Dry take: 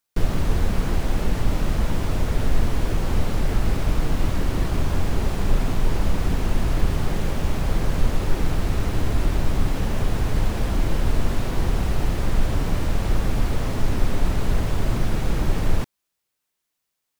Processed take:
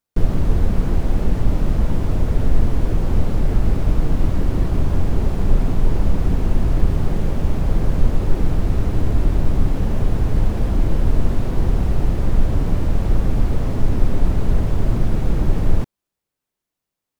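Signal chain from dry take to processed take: tilt shelf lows +5.5 dB, about 870 Hz; trim -1 dB

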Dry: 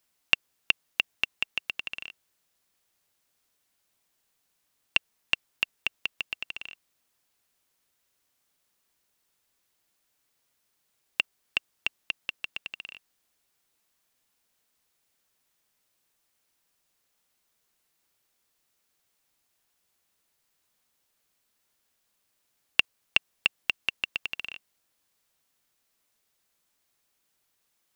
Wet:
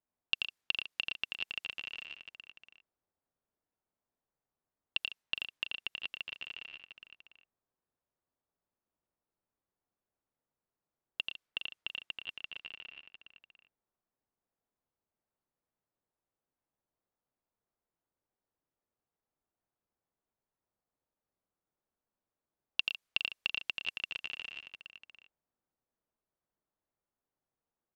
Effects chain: level-controlled noise filter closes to 920 Hz, open at -31 dBFS; on a send: multi-tap echo 85/114/153/414/701 ms -4.5/-10/-14/-9/-12.5 dB; on the sum: trim -9 dB

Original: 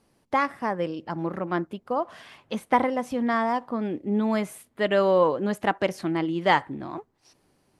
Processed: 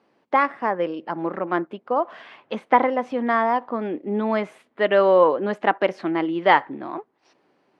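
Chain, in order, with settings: band-pass 290–2800 Hz; trim +5 dB

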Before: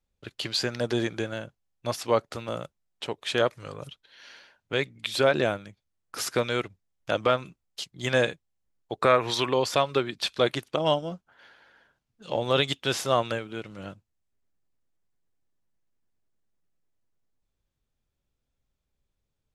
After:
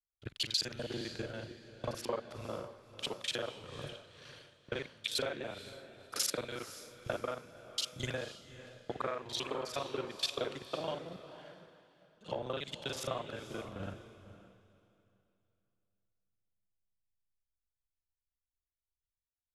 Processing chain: time reversed locally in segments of 36 ms; compression 8:1, threshold -37 dBFS, peak gain reduction 21 dB; echo that smears into a reverb 512 ms, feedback 50%, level -6 dB; three bands expanded up and down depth 100%

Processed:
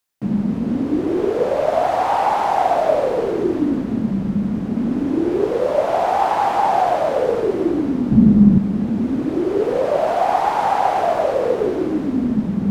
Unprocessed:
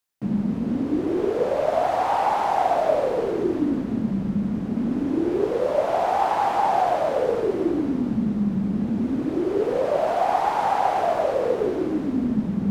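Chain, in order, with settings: 8.12–8.58 s: bass shelf 360 Hz +11.5 dB; trim +4 dB

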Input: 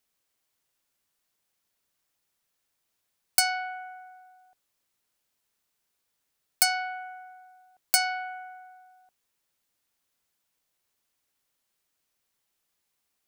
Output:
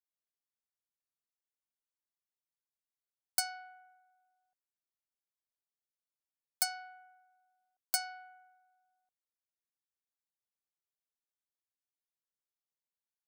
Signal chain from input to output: peaking EQ 2.5 kHz -11.5 dB 0.31 oct; hum notches 60/120/180/240/300/360/420 Hz; upward expansion 1.5:1, over -47 dBFS; trim -8.5 dB

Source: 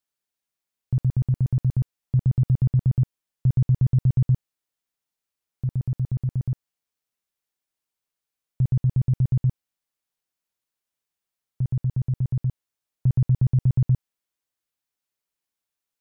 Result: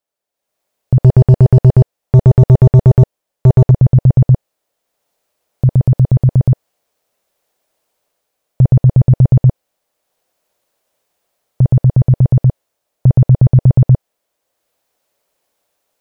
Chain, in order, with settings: peaking EQ 580 Hz +14 dB 1.2 oct; 1.04–3.71 s: waveshaping leveller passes 2; level rider gain up to 15.5 dB

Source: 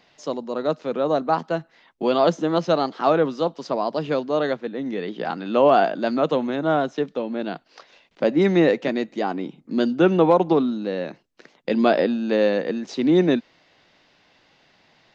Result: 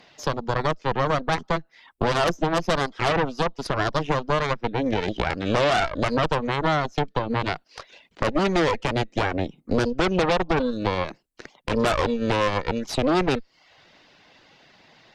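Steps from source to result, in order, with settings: reverb removal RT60 0.52 s; Chebyshev shaper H 8 -9 dB, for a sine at -5.5 dBFS; compression, threshold -24 dBFS, peak gain reduction 13 dB; loudness maximiser +13.5 dB; trim -8 dB

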